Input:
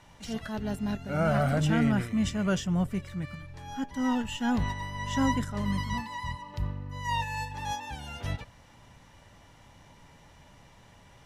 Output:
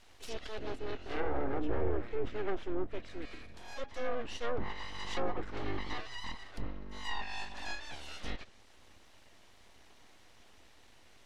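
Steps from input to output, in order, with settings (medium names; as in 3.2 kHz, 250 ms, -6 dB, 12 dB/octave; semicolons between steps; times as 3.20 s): full-wave rectifier; fifteen-band graphic EQ 160 Hz -11 dB, 1 kHz -4 dB, 4 kHz +3 dB; low-pass that closes with the level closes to 990 Hz, closed at -22 dBFS; trim -2.5 dB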